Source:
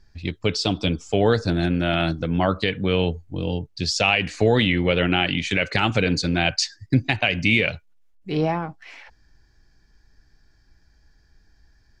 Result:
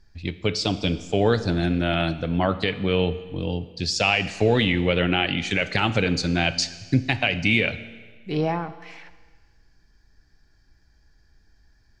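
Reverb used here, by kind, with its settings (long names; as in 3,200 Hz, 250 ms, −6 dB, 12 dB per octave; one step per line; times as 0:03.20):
four-comb reverb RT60 1.5 s, combs from 27 ms, DRR 13.5 dB
level −1.5 dB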